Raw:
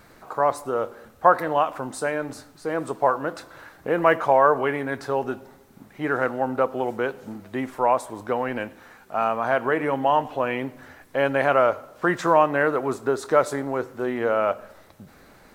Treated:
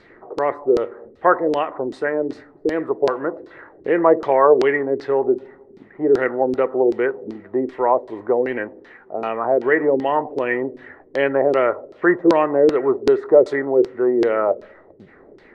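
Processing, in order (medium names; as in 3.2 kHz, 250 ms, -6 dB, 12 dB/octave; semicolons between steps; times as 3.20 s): small resonant body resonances 380/1900 Hz, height 14 dB, ringing for 20 ms; LFO low-pass saw down 2.6 Hz 330–4700 Hz; trim -4.5 dB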